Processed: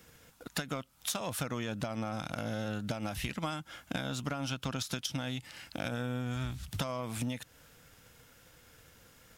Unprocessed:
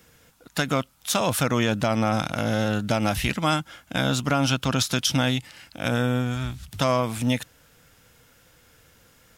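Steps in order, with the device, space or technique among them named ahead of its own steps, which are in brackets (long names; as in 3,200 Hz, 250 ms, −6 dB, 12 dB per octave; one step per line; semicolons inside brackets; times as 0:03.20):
drum-bus smash (transient designer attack +7 dB, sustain +1 dB; downward compressor 12 to 1, threshold −28 dBFS, peak gain reduction 16 dB; soft clipping −19.5 dBFS, distortion −22 dB)
level −3 dB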